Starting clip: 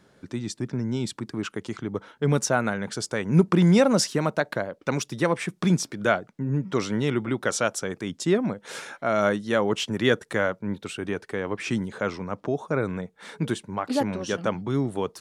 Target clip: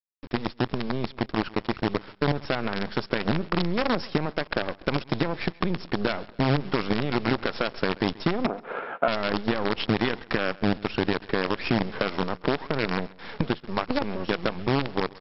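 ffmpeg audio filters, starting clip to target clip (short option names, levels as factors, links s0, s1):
-filter_complex "[0:a]aemphasis=mode=reproduction:type=75kf,dynaudnorm=f=290:g=17:m=3.16,alimiter=limit=0.224:level=0:latency=1:release=76,acompressor=threshold=0.0447:ratio=5,acrusher=bits=5:dc=4:mix=0:aa=0.000001,asettb=1/sr,asplit=3[s0][s1][s2];[s0]atrim=end=8.464[s3];[s1]atrim=start=8.46:end=9.08,asetpts=PTS-STARTPTS,afade=t=in:d=0.004:c=qsin,afade=t=out:st=0.616:d=0.004:c=qsin,highpass=230,equalizer=f=440:t=q:w=4:g=5,equalizer=f=680:t=q:w=4:g=7,equalizer=f=1300:t=q:w=4:g=6,equalizer=f=1900:t=q:w=4:g=-7,lowpass=f=2200:w=0.5412,lowpass=f=2200:w=1.3066[s4];[s2]atrim=start=9.076[s5];[s3][s4]acrossfade=d=0.004:c1=hsin:c2=qsin[s6];[s6][s5]acrossfade=d=0.004:c1=qsin:c2=hsin,aecho=1:1:134|268|402:0.0794|0.0342|0.0147,volume=1.78" -ar 44100 -c:a mp2 -b:a 48k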